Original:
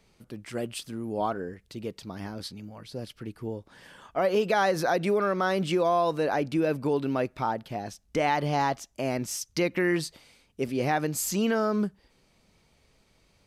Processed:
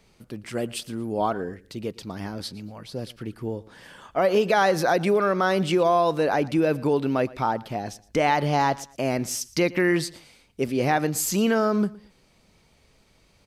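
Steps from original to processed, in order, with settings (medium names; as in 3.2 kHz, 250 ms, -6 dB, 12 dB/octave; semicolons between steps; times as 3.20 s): feedback delay 115 ms, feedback 29%, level -21 dB; trim +4 dB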